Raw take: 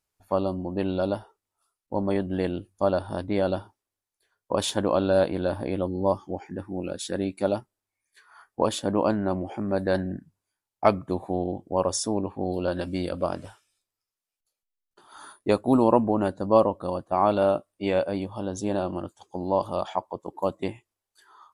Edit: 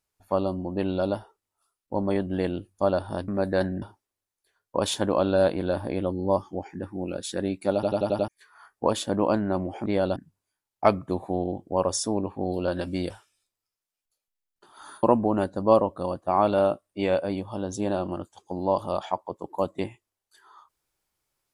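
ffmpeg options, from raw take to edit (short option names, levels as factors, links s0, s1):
-filter_complex "[0:a]asplit=13[s0][s1][s2][s3][s4][s5][s6][s7][s8][s9][s10][s11][s12];[s0]atrim=end=3.282[s13];[s1]atrim=start=9.618:end=10.162[s14];[s2]atrim=start=3.578:end=7.592[s15];[s3]atrim=start=7.498:end=7.592[s16];[s4]atrim=start=7.498:end=7.592[s17];[s5]atrim=start=7.498:end=7.592[s18];[s6]atrim=start=7.498:end=7.592[s19];[s7]atrim=start=7.498:end=7.592[s20];[s8]atrim=start=8.038:end=9.622[s21];[s9]atrim=start=3.278:end=3.582[s22];[s10]atrim=start=10.158:end=13.102[s23];[s11]atrim=start=13.448:end=15.382[s24];[s12]atrim=start=15.868[s25];[s13][s14]acrossfade=d=0.004:c1=hsin:c2=hsin[s26];[s26][s15]acrossfade=d=0.004:c1=hsin:c2=hsin[s27];[s27][s16]acrossfade=d=0.004:c1=hsin:c2=hsin[s28];[s28][s17]acrossfade=d=0.004:c1=hsin:c2=hsin[s29];[s29][s18]acrossfade=d=0.004:c1=hsin:c2=hsin[s30];[s30][s19]acrossfade=d=0.004:c1=hsin:c2=hsin[s31];[s31][s20]acrossfade=d=0.004:c1=hsin:c2=hsin[s32];[s32][s21]acrossfade=d=0.004:c1=hsin:c2=hsin[s33];[s33][s22]acrossfade=d=0.004:c1=hsin:c2=hsin[s34];[s34][s23]acrossfade=d=0.004:c1=hsin:c2=hsin[s35];[s35][s24]acrossfade=d=0.004:c1=hsin:c2=hsin[s36];[s36][s25]acrossfade=d=0.004:c1=hsin:c2=hsin"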